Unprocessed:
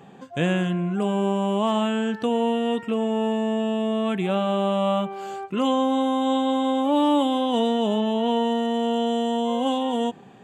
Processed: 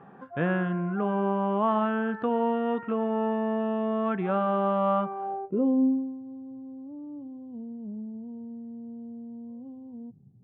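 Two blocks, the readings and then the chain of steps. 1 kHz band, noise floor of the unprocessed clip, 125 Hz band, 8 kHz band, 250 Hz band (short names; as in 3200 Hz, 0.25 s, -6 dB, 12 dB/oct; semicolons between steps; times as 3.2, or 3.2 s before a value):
-5.0 dB, -46 dBFS, -4.5 dB, n/a, -6.0 dB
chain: low-pass sweep 1400 Hz -> 120 Hz, 5.02–6.23; gain -4.5 dB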